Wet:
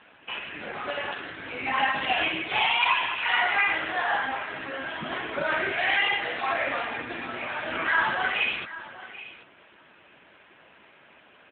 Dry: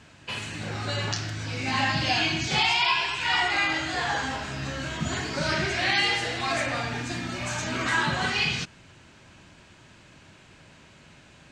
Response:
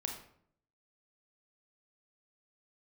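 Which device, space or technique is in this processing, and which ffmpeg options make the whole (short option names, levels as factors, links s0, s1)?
telephone: -filter_complex "[0:a]asplit=3[s0][s1][s2];[s0]afade=t=out:st=6.21:d=0.02[s3];[s1]bandreject=f=84.68:t=h:w=4,bandreject=f=169.36:t=h:w=4,bandreject=f=254.04:t=h:w=4,bandreject=f=338.72:t=h:w=4,bandreject=f=423.4:t=h:w=4,bandreject=f=508.08:t=h:w=4,bandreject=f=592.76:t=h:w=4,bandreject=f=677.44:t=h:w=4,bandreject=f=762.12:t=h:w=4,bandreject=f=846.8:t=h:w=4,bandreject=f=931.48:t=h:w=4,bandreject=f=1016.16:t=h:w=4,bandreject=f=1100.84:t=h:w=4,bandreject=f=1185.52:t=h:w=4,bandreject=f=1270.2:t=h:w=4,bandreject=f=1354.88:t=h:w=4,bandreject=f=1439.56:t=h:w=4,bandreject=f=1524.24:t=h:w=4,bandreject=f=1608.92:t=h:w=4,bandreject=f=1693.6:t=h:w=4,bandreject=f=1778.28:t=h:w=4,bandreject=f=1862.96:t=h:w=4,bandreject=f=1947.64:t=h:w=4,bandreject=f=2032.32:t=h:w=4,bandreject=f=2117:t=h:w=4,bandreject=f=2201.68:t=h:w=4,bandreject=f=2286.36:t=h:w=4,bandreject=f=2371.04:t=h:w=4,bandreject=f=2455.72:t=h:w=4,bandreject=f=2540.4:t=h:w=4,bandreject=f=2625.08:t=h:w=4,afade=t=in:st=6.21:d=0.02,afade=t=out:st=7.7:d=0.02[s4];[s2]afade=t=in:st=7.7:d=0.02[s5];[s3][s4][s5]amix=inputs=3:normalize=0,highpass=370,lowpass=3300,lowpass=9300,aecho=1:1:784:0.158,volume=1.5" -ar 8000 -c:a libopencore_amrnb -b:a 7950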